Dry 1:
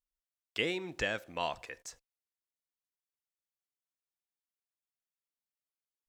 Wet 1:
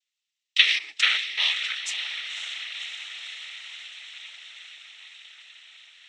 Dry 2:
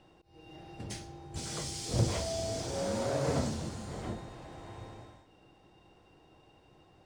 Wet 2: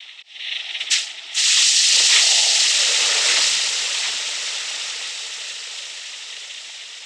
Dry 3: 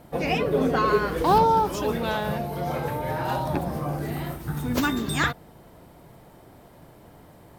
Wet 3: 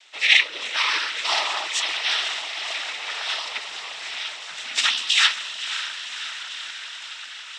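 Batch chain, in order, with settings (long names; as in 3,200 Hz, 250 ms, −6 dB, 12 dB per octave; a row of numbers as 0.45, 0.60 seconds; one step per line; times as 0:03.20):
high-pass with resonance 2,800 Hz, resonance Q 2.6
feedback delay with all-pass diffusion 548 ms, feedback 73%, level −10 dB
cochlear-implant simulation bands 12
normalise the peak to −2 dBFS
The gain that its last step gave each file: +11.0, +24.5, +9.5 decibels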